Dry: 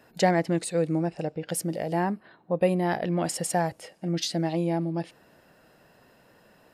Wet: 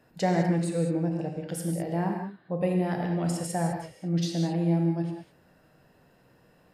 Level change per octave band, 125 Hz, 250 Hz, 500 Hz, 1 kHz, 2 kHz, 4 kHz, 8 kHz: +3.0, +1.0, −3.5, −4.0, −5.0, −5.5, −5.5 decibels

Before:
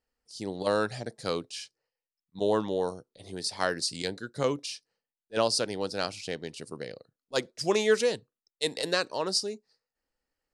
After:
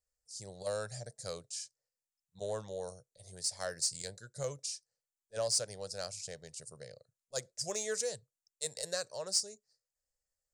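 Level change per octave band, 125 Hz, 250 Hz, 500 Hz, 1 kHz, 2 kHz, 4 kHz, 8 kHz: −7.0, −19.0, −11.0, −14.0, −13.0, −7.0, +2.0 decibels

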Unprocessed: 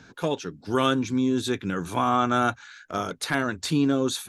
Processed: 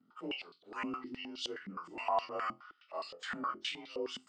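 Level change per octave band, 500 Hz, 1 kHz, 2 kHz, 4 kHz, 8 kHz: −14.0, −11.5, −12.5, −9.5, −19.5 decibels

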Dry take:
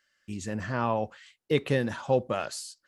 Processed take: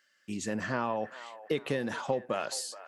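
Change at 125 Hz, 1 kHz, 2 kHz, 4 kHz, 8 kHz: −9.0, −3.0, −1.5, −1.0, +2.5 decibels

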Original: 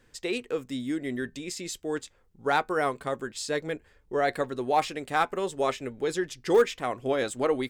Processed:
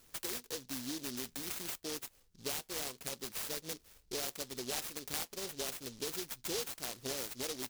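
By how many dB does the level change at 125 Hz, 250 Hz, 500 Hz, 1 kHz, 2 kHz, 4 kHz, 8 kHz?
−12.0, −13.5, −17.5, −20.5, −13.5, −2.0, +1.5 decibels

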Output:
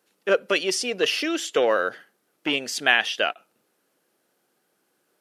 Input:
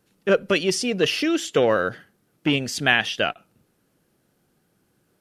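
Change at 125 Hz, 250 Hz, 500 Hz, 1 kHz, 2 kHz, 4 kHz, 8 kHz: −16.5, −6.5, −2.0, 0.0, 0.0, 0.0, 0.0 decibels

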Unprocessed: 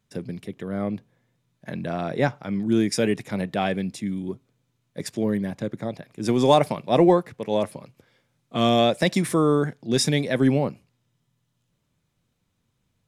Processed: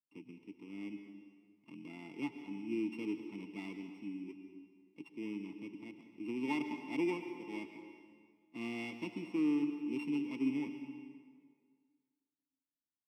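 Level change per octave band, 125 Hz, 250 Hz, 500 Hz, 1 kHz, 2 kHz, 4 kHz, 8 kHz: −26.5 dB, −13.0 dB, −23.0 dB, −23.5 dB, −14.5 dB, −23.5 dB, below −30 dB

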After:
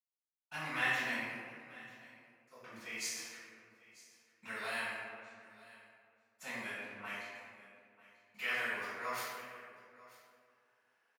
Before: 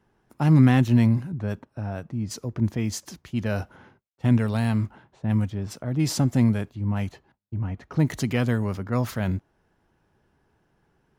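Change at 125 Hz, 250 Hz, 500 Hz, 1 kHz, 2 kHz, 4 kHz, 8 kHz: −37.5, −30.0, −16.5, −8.5, −0.5, −6.5, −9.5 decibels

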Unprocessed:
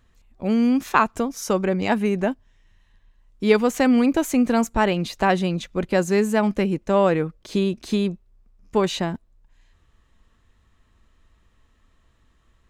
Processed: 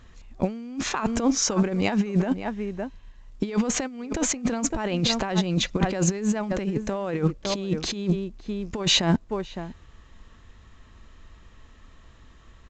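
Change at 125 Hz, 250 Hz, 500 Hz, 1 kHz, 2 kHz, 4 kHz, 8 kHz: +1.5, −4.0, −7.0, −8.0, −5.5, +6.0, +8.0 decibels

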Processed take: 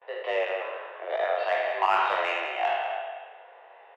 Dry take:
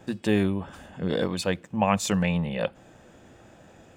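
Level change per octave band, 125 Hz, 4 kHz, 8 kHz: below −35 dB, −1.5 dB, below −20 dB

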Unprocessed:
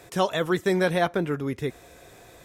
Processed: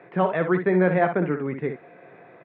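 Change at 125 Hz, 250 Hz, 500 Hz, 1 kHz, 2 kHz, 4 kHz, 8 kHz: +3.0 dB, +3.5 dB, +2.5 dB, +2.5 dB, +1.5 dB, below −15 dB, below −35 dB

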